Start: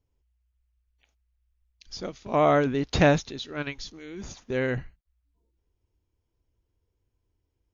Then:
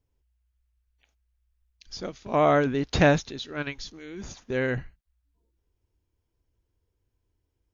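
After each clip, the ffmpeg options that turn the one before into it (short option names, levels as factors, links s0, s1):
-af "equalizer=f=1600:w=5.5:g=2.5"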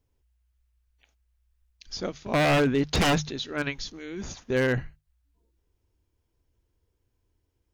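-af "bandreject=f=50:t=h:w=6,bandreject=f=100:t=h:w=6,bandreject=f=150:t=h:w=6,aeval=exprs='0.106*(abs(mod(val(0)/0.106+3,4)-2)-1)':c=same,volume=1.41"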